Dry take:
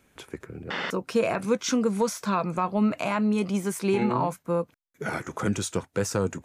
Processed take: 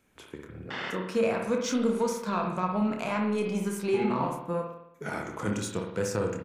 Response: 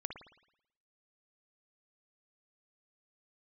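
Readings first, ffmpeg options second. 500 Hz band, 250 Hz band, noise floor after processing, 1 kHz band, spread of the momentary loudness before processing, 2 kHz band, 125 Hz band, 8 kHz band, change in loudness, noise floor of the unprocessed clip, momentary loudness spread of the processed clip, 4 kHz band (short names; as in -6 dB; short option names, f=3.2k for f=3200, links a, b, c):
-2.0 dB, -3.5 dB, -55 dBFS, -3.0 dB, 10 LU, -3.0 dB, -3.5 dB, -5.0 dB, -2.5 dB, -66 dBFS, 12 LU, -4.0 dB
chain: -filter_complex "[0:a]aeval=exprs='0.224*(cos(1*acos(clip(val(0)/0.224,-1,1)))-cos(1*PI/2))+0.00562*(cos(7*acos(clip(val(0)/0.224,-1,1)))-cos(7*PI/2))':c=same,asplit=2[a][b];[b]adelay=28,volume=-7.5dB[c];[a][c]amix=inputs=2:normalize=0[d];[1:a]atrim=start_sample=2205[e];[d][e]afir=irnorm=-1:irlink=0,volume=-2dB"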